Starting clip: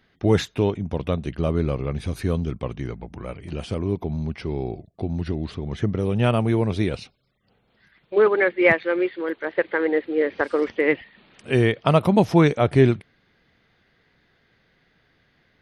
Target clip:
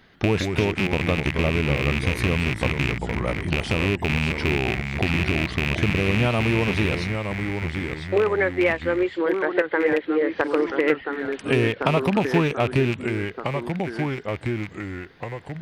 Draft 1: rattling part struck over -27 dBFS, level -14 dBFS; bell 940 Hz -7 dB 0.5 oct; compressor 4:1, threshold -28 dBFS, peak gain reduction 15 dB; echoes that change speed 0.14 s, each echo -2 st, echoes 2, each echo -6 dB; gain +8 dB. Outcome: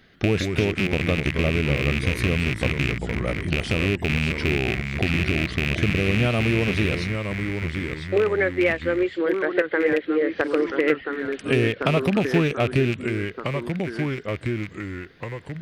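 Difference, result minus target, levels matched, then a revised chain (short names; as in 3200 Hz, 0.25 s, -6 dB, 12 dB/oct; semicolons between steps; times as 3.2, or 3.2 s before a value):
1000 Hz band -4.0 dB
rattling part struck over -27 dBFS, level -14 dBFS; bell 940 Hz +3 dB 0.5 oct; compressor 4:1, threshold -28 dBFS, peak gain reduction 15.5 dB; echoes that change speed 0.14 s, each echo -2 st, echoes 2, each echo -6 dB; gain +8 dB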